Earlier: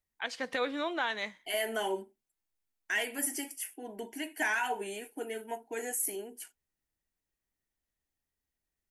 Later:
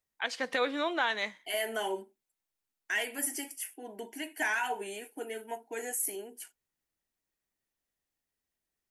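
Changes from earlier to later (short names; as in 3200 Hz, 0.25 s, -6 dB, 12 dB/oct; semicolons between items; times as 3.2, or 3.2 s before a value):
first voice +3.0 dB; master: add low shelf 150 Hz -9 dB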